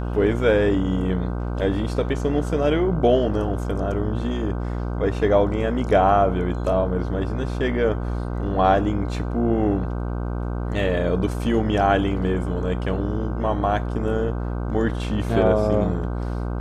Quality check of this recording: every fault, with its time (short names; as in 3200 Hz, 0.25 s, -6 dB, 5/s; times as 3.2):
buzz 60 Hz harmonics 26 -26 dBFS